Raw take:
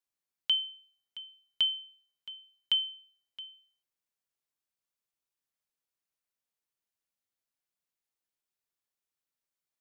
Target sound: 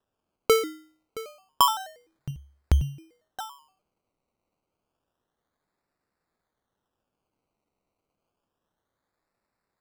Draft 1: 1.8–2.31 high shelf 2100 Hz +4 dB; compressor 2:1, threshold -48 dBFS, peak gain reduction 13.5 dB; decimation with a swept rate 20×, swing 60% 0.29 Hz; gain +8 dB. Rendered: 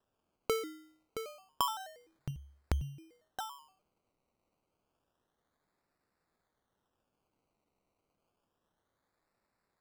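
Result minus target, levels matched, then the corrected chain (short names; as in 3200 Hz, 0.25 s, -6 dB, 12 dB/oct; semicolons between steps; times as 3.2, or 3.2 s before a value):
compressor: peak gain reduction +13.5 dB
1.8–2.31 high shelf 2100 Hz +4 dB; decimation with a swept rate 20×, swing 60% 0.29 Hz; gain +8 dB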